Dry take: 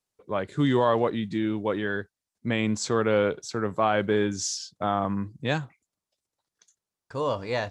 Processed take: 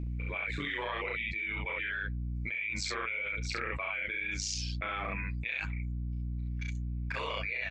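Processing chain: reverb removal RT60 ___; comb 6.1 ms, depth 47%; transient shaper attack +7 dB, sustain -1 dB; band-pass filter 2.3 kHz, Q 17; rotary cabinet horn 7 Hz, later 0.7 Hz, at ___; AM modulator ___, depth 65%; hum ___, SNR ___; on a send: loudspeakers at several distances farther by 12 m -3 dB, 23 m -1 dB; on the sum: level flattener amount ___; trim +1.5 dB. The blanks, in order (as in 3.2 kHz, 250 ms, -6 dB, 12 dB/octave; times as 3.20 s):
0.77 s, 4.09 s, 100 Hz, 60 Hz, 22 dB, 100%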